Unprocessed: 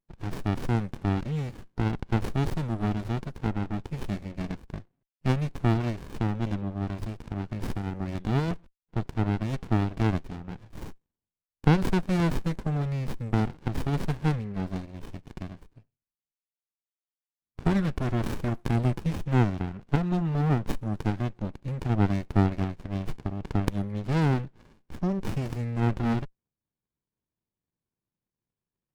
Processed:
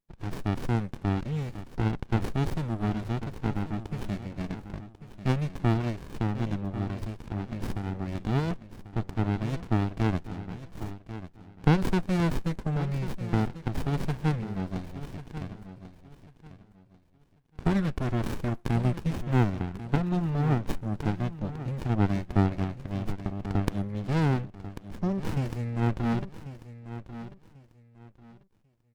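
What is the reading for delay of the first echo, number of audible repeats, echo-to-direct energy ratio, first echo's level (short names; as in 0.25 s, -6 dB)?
1.092 s, 2, -12.5 dB, -13.0 dB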